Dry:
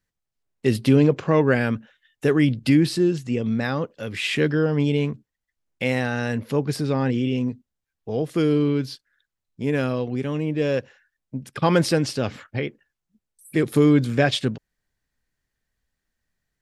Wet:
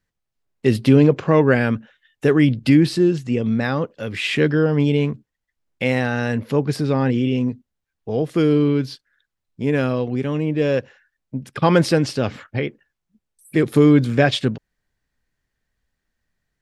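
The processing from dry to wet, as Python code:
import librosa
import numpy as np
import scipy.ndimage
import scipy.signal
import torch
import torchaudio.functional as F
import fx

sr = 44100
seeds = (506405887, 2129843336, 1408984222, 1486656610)

y = fx.high_shelf(x, sr, hz=5600.0, db=-6.5)
y = F.gain(torch.from_numpy(y), 3.5).numpy()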